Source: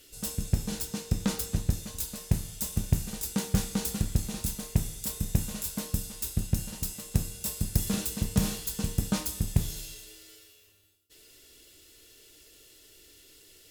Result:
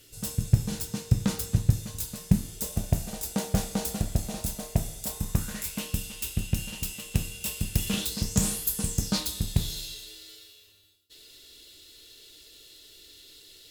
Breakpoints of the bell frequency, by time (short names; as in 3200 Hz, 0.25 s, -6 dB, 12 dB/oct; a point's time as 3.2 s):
bell +12.5 dB 0.53 oct
2.17 s 120 Hz
2.76 s 660 Hz
5.06 s 660 Hz
5.8 s 2800 Hz
7.93 s 2800 Hz
8.68 s 13000 Hz
9.22 s 3900 Hz